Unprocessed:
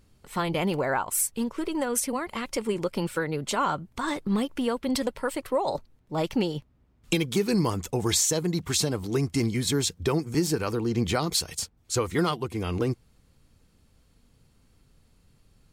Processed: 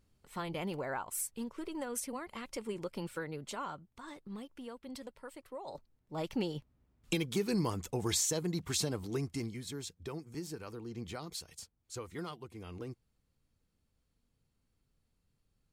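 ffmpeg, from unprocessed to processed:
-af "volume=0.944,afade=t=out:st=3.24:d=0.72:silence=0.421697,afade=t=in:st=5.59:d=0.92:silence=0.281838,afade=t=out:st=8.99:d=0.64:silence=0.354813"

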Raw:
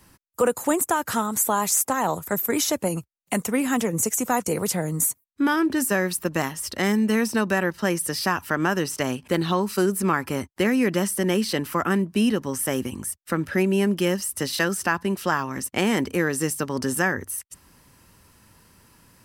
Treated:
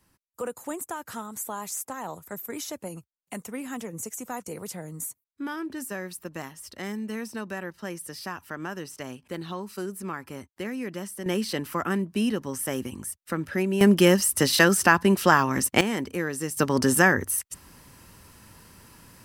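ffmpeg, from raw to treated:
-af "asetnsamples=n=441:p=0,asendcmd='11.26 volume volume -4.5dB;13.81 volume volume 5dB;15.81 volume volume -6dB;16.57 volume volume 4dB',volume=0.251"

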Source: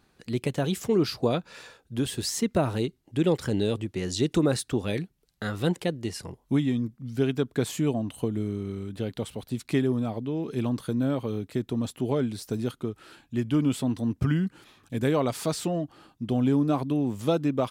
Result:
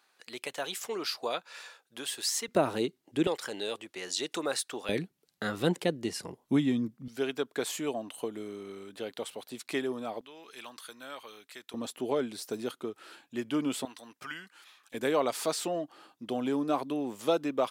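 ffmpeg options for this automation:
-af "asetnsamples=n=441:p=0,asendcmd='2.48 highpass f 270;3.27 highpass f 680;4.89 highpass f 200;7.08 highpass f 480;10.21 highpass f 1300;11.74 highpass f 380;13.85 highpass f 1100;14.94 highpass f 410',highpass=790"

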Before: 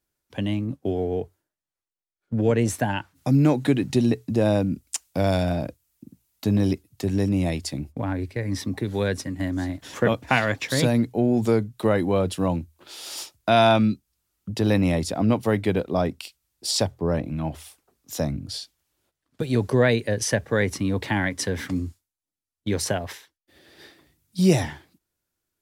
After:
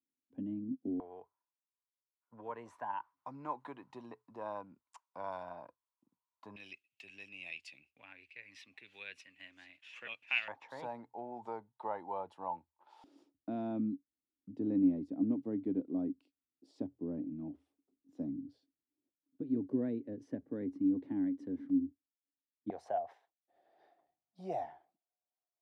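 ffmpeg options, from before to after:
-af "asetnsamples=n=441:p=0,asendcmd='1 bandpass f 1000;6.56 bandpass f 2600;10.48 bandpass f 880;13.04 bandpass f 280;22.7 bandpass f 720',bandpass=f=260:t=q:w=10:csg=0"

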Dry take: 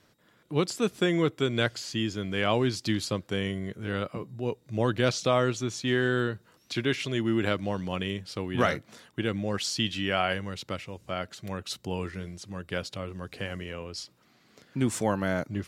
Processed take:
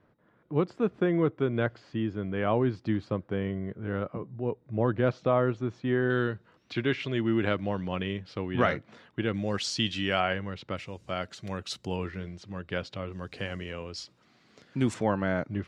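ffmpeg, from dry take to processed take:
-af "asetnsamples=n=441:p=0,asendcmd='6.1 lowpass f 2900;9.34 lowpass f 6800;10.2 lowpass f 2800;10.77 lowpass f 7300;11.96 lowpass f 3600;13.12 lowpass f 6300;14.94 lowpass f 2800',lowpass=1400"

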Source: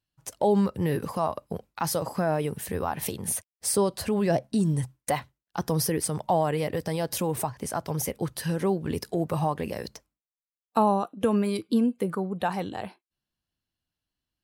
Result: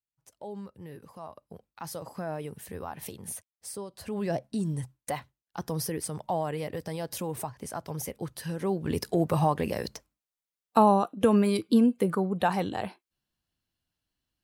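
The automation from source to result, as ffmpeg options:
-af "volume=3.16,afade=t=in:st=1.07:d=1.22:silence=0.354813,afade=t=out:st=3.32:d=0.57:silence=0.398107,afade=t=in:st=3.89:d=0.33:silence=0.281838,afade=t=in:st=8.59:d=0.47:silence=0.398107"

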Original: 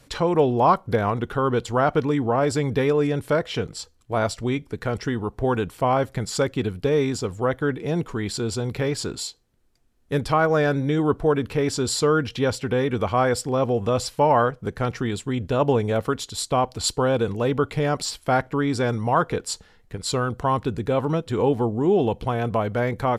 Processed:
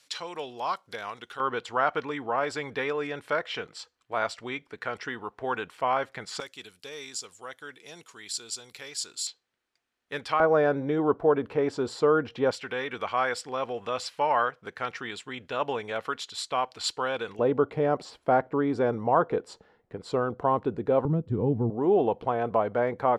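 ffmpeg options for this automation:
-af "asetnsamples=n=441:p=0,asendcmd='1.4 bandpass f 1800;6.4 bandpass f 7100;9.27 bandpass f 2200;10.4 bandpass f 690;12.51 bandpass f 2100;17.39 bandpass f 540;21.05 bandpass f 140;21.7 bandpass f 710',bandpass=f=4800:t=q:w=0.76:csg=0"

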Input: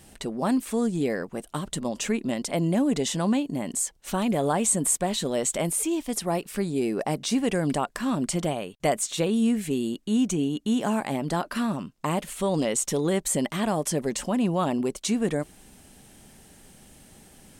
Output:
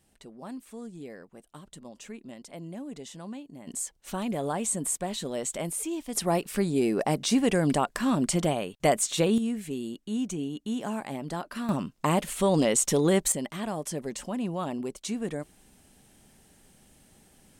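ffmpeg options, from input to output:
-af "asetnsamples=n=441:p=0,asendcmd='3.67 volume volume -6dB;6.15 volume volume 1dB;9.38 volume volume -7dB;11.69 volume volume 2dB;13.32 volume volume -7dB',volume=0.158"

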